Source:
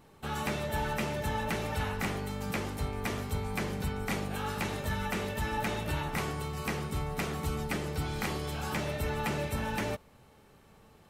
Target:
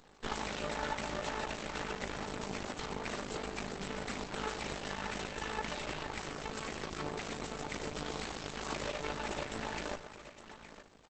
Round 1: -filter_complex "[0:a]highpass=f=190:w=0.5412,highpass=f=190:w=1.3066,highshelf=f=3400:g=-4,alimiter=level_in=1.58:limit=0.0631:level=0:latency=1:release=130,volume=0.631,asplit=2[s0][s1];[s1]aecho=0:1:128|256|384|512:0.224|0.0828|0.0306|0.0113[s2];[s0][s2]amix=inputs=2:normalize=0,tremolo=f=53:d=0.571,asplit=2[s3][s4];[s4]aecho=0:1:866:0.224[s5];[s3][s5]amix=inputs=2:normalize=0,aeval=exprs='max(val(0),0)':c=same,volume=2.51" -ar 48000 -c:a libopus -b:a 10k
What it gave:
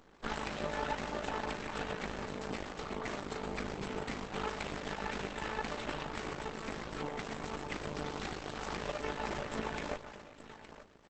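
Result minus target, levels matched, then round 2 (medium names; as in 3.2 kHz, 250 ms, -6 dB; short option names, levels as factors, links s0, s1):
8 kHz band -5.0 dB
-filter_complex "[0:a]highpass=f=190:w=0.5412,highpass=f=190:w=1.3066,highshelf=f=3400:g=4.5,alimiter=level_in=1.58:limit=0.0631:level=0:latency=1:release=130,volume=0.631,asplit=2[s0][s1];[s1]aecho=0:1:128|256|384|512:0.224|0.0828|0.0306|0.0113[s2];[s0][s2]amix=inputs=2:normalize=0,tremolo=f=53:d=0.571,asplit=2[s3][s4];[s4]aecho=0:1:866:0.224[s5];[s3][s5]amix=inputs=2:normalize=0,aeval=exprs='max(val(0),0)':c=same,volume=2.51" -ar 48000 -c:a libopus -b:a 10k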